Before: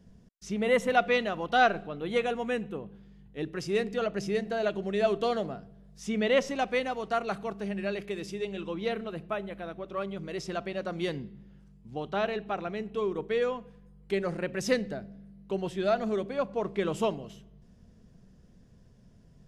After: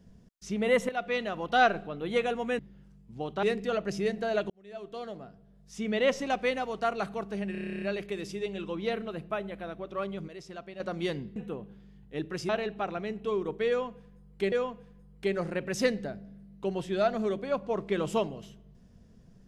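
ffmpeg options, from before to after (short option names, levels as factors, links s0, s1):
-filter_complex "[0:a]asplit=20[s0][s1][s2][s3][s4][s5][s6][s7][s8][s9][s10][s11][s12][s13][s14][s15][s16][s17][s18][s19];[s0]atrim=end=0.89,asetpts=PTS-STARTPTS,afade=t=out:st=0.886:d=0.004:c=hsin:silence=0.223872[s20];[s1]atrim=start=0.89:end=2.592,asetpts=PTS-STARTPTS,afade=t=in:d=0.8:c=qsin:silence=0.223872[s21];[s2]atrim=start=11.348:end=12.192[s22];[s3]atrim=start=3.718:end=4.79,asetpts=PTS-STARTPTS,afade=t=out:st=1.068:d=0.004:c=hsin[s23];[s4]atrim=start=4.79:end=7.842,asetpts=PTS-STARTPTS,afade=t=in:d=1.78[s24];[s5]atrim=start=7.808:end=7.842[s25];[s6]atrim=start=7.808:end=7.842[s26];[s7]atrim=start=7.808:end=7.842[s27];[s8]atrim=start=7.808:end=7.842[s28];[s9]atrim=start=7.808:end=7.842[s29];[s10]atrim=start=7.808:end=7.842[s30];[s11]atrim=start=7.808:end=7.842[s31];[s12]atrim=start=7.808:end=7.842[s32];[s13]atrim=start=7.808:end=7.842[s33];[s14]atrim=start=7.808:end=10.272[s34];[s15]atrim=start=10.268:end=10.792,asetpts=PTS-STARTPTS,volume=0.355[s35];[s16]atrim=start=10.788:end=11.352[s36];[s17]atrim=start=2.588:end=3.722[s37];[s18]atrim=start=12.188:end=14.222[s38];[s19]atrim=start=13.388[s39];[s20][s21]concat=n=2:v=0:a=1[s40];[s40][s22]acrossfade=d=0.004:c1=hsin:c2=hsin[s41];[s23][s24]concat=n=2:v=0:a=1[s42];[s41][s42]acrossfade=d=0.004:c1=hsin:c2=hsin[s43];[s43][s25]acrossfade=d=0.004:c1=hsin:c2=hsin[s44];[s44][s26]acrossfade=d=0.004:c1=hsin:c2=hsin[s45];[s45][s27]acrossfade=d=0.004:c1=hsin:c2=hsin[s46];[s46][s28]acrossfade=d=0.004:c1=hsin:c2=hsin[s47];[s47][s29]acrossfade=d=0.004:c1=hsin:c2=hsin[s48];[s48][s30]acrossfade=d=0.004:c1=hsin:c2=hsin[s49];[s49][s31]acrossfade=d=0.004:c1=hsin:c2=hsin[s50];[s50][s32]acrossfade=d=0.004:c1=hsin:c2=hsin[s51];[s51][s33]acrossfade=d=0.004:c1=hsin:c2=hsin[s52];[s52][s34]acrossfade=d=0.004:c1=hsin:c2=hsin[s53];[s53][s35]acrossfade=d=0.004:c1=hsin:c2=hsin[s54];[s54][s36]acrossfade=d=0.004:c1=hsin:c2=hsin[s55];[s55][s37]acrossfade=d=0.004:c1=hsin:c2=hsin[s56];[s56][s38]acrossfade=d=0.004:c1=hsin:c2=hsin[s57];[s57][s39]acrossfade=d=0.004:c1=hsin:c2=hsin"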